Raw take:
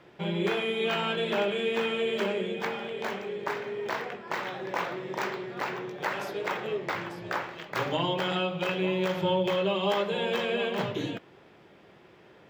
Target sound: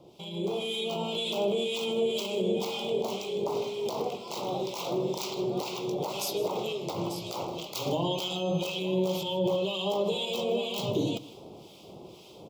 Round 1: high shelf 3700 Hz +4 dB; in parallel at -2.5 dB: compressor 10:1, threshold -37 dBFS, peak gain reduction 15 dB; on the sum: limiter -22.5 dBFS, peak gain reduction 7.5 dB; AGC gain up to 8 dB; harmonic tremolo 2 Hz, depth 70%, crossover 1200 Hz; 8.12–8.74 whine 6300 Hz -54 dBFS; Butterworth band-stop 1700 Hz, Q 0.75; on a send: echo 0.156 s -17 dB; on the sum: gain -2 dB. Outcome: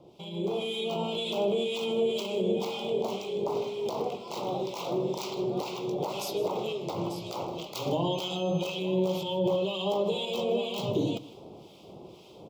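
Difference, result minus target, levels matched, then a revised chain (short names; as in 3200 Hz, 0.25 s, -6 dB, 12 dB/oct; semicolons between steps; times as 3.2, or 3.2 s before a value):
8000 Hz band -4.5 dB
high shelf 3700 Hz +11 dB; in parallel at -2.5 dB: compressor 10:1, threshold -37 dBFS, peak gain reduction 15.5 dB; on the sum: limiter -22.5 dBFS, peak gain reduction 9.5 dB; AGC gain up to 8 dB; harmonic tremolo 2 Hz, depth 70%, crossover 1200 Hz; 8.12–8.74 whine 6300 Hz -54 dBFS; Butterworth band-stop 1700 Hz, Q 0.75; on a send: echo 0.156 s -17 dB; on the sum: gain -2 dB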